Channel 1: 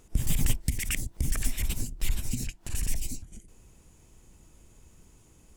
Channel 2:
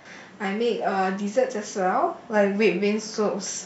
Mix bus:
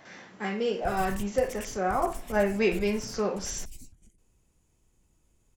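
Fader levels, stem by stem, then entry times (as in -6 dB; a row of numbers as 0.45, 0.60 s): -12.5, -4.5 dB; 0.70, 0.00 s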